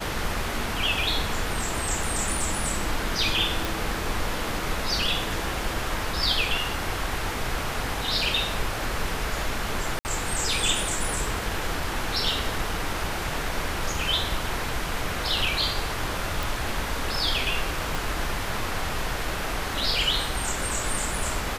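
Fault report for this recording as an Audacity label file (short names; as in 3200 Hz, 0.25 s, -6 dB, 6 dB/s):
3.650000	3.650000	pop
9.990000	10.050000	gap 59 ms
16.430000	16.430000	pop
17.950000	17.950000	pop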